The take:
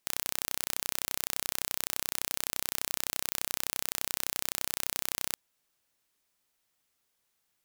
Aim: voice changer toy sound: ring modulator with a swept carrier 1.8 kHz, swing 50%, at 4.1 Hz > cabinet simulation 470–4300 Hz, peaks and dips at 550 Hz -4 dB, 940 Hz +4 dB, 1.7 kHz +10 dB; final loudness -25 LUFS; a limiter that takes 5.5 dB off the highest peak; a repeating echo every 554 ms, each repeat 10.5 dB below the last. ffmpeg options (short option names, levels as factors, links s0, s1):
-af "alimiter=limit=0.355:level=0:latency=1,aecho=1:1:554|1108|1662:0.299|0.0896|0.0269,aeval=exprs='val(0)*sin(2*PI*1800*n/s+1800*0.5/4.1*sin(2*PI*4.1*n/s))':c=same,highpass=470,equalizer=f=550:t=q:w=4:g=-4,equalizer=f=940:t=q:w=4:g=4,equalizer=f=1700:t=q:w=4:g=10,lowpass=f=4300:w=0.5412,lowpass=f=4300:w=1.3066,volume=11.2"